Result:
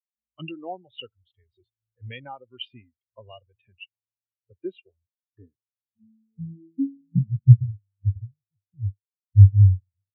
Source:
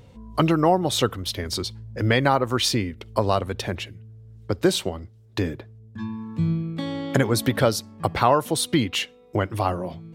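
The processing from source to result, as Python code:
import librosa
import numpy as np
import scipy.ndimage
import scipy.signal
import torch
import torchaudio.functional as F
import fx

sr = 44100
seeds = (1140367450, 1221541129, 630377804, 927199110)

y = fx.noise_reduce_blind(x, sr, reduce_db=7)
y = fx.filter_sweep_lowpass(y, sr, from_hz=2800.0, to_hz=100.0, start_s=4.75, end_s=7.7, q=7.9)
y = fx.spectral_expand(y, sr, expansion=2.5)
y = y * 10.0 ** (-1.5 / 20.0)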